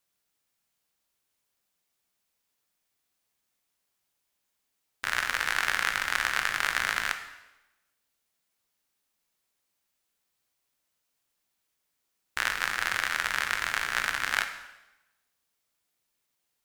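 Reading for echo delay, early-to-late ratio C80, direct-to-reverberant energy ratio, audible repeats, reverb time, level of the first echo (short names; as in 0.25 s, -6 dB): none, 12.0 dB, 7.0 dB, none, 1.0 s, none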